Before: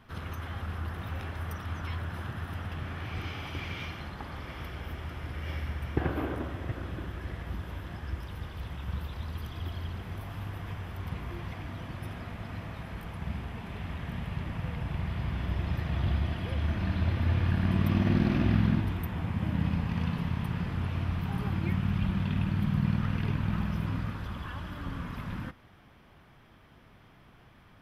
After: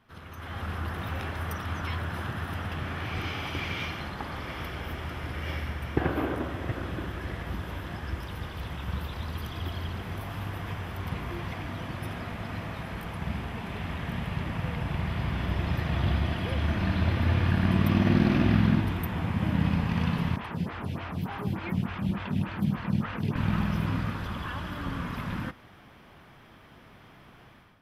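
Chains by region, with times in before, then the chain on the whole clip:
20.36–23.36 HPF 58 Hz + photocell phaser 3.4 Hz
whole clip: low shelf 110 Hz -7 dB; AGC gain up to 12 dB; gain -6 dB

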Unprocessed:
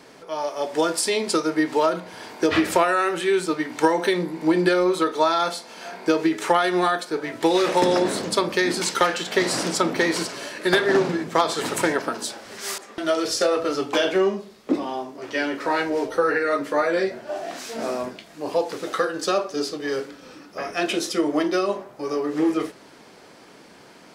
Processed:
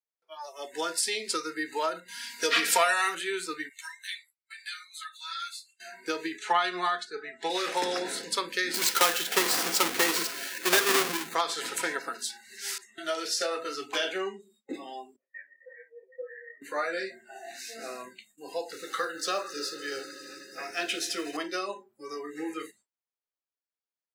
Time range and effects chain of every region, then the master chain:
2.08–3.15 high shelf 2300 Hz +8.5 dB + comb 4.3 ms, depth 73%
3.69–5.8 Bessel high-pass 1900 Hz, order 8 + ensemble effect
6.38–7.5 LPF 6100 Hz + comb 4.7 ms, depth 51% + three-band expander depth 40%
8.74–11.35 half-waves squared off + HPF 120 Hz + high shelf 8100 Hz +2.5 dB
15.16–16.62 vocal tract filter e + detuned doubles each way 40 cents
18.73–21.37 G.711 law mismatch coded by mu + low shelf 100 Hz +4.5 dB + swelling echo 80 ms, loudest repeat 5, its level -18 dB
whole clip: gate with hold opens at -35 dBFS; spectral noise reduction 27 dB; HPF 1200 Hz 6 dB/oct; gain -3.5 dB

